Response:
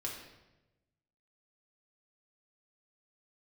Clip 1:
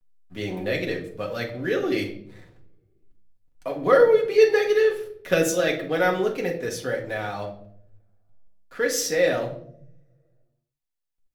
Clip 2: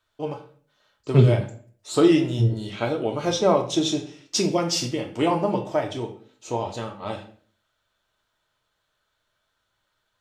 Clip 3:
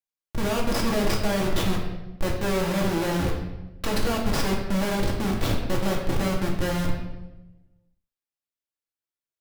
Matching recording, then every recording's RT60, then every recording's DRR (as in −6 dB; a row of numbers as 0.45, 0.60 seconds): 3; 0.65, 0.50, 1.0 seconds; −0.5, 2.0, −2.5 decibels